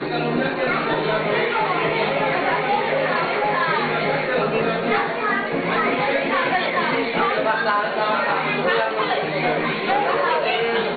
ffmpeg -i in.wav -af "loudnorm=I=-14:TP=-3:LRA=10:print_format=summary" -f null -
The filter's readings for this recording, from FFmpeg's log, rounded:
Input Integrated:    -20.4 LUFS
Input True Peak:      -7.7 dBTP
Input LRA:             0.5 LU
Input Threshold:     -30.4 LUFS